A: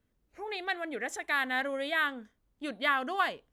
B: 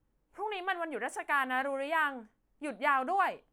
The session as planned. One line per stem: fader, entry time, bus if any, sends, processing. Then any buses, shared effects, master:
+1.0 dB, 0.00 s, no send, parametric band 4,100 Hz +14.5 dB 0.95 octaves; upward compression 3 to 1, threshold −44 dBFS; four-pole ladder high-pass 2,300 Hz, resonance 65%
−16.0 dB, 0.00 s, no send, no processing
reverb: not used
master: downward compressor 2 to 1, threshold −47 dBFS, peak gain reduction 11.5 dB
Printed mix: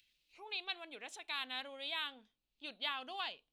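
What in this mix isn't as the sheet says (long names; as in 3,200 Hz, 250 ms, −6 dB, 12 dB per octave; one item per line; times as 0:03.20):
stem A +1.0 dB → −6.5 dB
master: missing downward compressor 2 to 1, threshold −47 dBFS, peak gain reduction 11.5 dB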